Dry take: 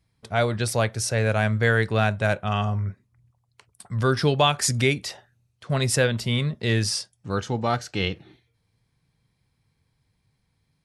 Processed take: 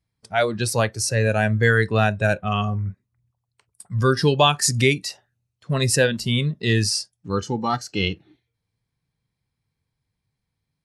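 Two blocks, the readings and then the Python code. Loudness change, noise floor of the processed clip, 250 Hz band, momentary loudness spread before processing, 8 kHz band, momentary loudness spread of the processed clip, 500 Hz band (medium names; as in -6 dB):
+2.5 dB, -80 dBFS, +3.0 dB, 9 LU, +3.5 dB, 10 LU, +2.5 dB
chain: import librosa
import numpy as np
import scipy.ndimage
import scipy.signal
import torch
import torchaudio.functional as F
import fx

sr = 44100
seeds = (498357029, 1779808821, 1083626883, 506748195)

y = fx.noise_reduce_blind(x, sr, reduce_db=12)
y = y * 10.0 ** (3.5 / 20.0)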